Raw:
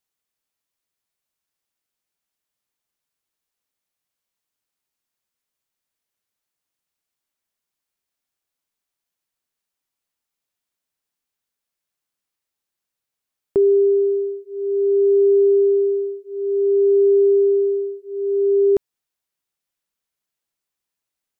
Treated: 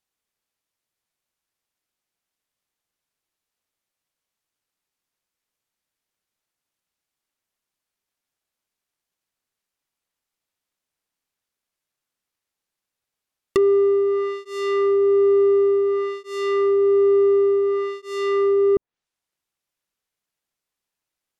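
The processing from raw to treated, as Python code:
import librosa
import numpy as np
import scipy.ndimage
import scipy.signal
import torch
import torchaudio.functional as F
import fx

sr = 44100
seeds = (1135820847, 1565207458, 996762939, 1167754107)

y = fx.halfwave_hold(x, sr)
y = fx.env_lowpass_down(y, sr, base_hz=560.0, full_db=-12.5)
y = y * librosa.db_to_amplitude(-3.0)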